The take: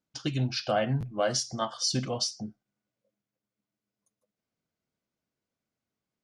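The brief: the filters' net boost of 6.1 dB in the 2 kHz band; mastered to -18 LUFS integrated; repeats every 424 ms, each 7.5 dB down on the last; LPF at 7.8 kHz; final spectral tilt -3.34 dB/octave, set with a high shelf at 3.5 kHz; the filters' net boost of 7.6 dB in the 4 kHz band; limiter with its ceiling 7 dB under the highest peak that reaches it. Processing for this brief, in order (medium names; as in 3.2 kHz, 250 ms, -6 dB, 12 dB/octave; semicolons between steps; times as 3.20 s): low-pass 7.8 kHz; peaking EQ 2 kHz +5.5 dB; treble shelf 3.5 kHz +5.5 dB; peaking EQ 4 kHz +5 dB; peak limiter -16 dBFS; feedback delay 424 ms, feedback 42%, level -7.5 dB; trim +9.5 dB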